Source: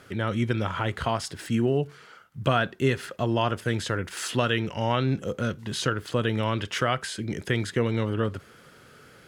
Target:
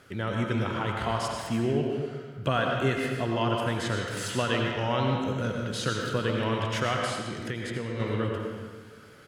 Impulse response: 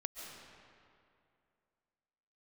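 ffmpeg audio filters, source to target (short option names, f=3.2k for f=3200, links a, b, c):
-filter_complex "[1:a]atrim=start_sample=2205,asetrate=70560,aresample=44100[a];[0:a][a]afir=irnorm=-1:irlink=0,asplit=3[b][c][d];[b]afade=t=out:st=7.18:d=0.02[e];[c]acompressor=threshold=-35dB:ratio=3,afade=t=in:st=7.18:d=0.02,afade=t=out:st=7.99:d=0.02[f];[d]afade=t=in:st=7.99:d=0.02[g];[e][f][g]amix=inputs=3:normalize=0,asplit=2[h][i];[i]adelay=150,highpass=300,lowpass=3.4k,asoftclip=type=hard:threshold=-25.5dB,volume=-12dB[j];[h][j]amix=inputs=2:normalize=0,volume=4dB"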